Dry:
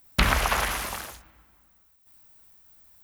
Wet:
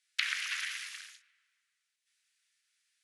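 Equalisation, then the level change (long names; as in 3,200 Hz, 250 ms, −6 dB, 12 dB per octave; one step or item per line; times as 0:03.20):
Butterworth high-pass 1,700 Hz 36 dB per octave
elliptic low-pass filter 11,000 Hz, stop band 50 dB
high-frequency loss of the air 56 metres
−4.0 dB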